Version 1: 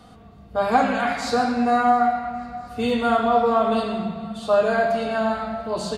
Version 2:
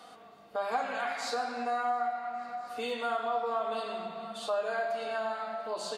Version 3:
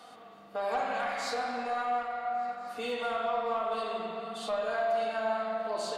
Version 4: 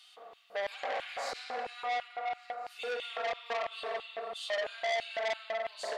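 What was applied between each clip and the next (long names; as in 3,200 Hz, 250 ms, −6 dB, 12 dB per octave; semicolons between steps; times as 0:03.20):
high-pass filter 490 Hz 12 dB per octave; downward compressor 2 to 1, threshold −38 dBFS, peak gain reduction 13 dB
soft clipping −24.5 dBFS, distortion −20 dB; spring reverb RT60 2.1 s, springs 45 ms, chirp 40 ms, DRR 2.5 dB
auto-filter high-pass square 3 Hz 520–2,900 Hz; saturating transformer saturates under 2,400 Hz; level −3.5 dB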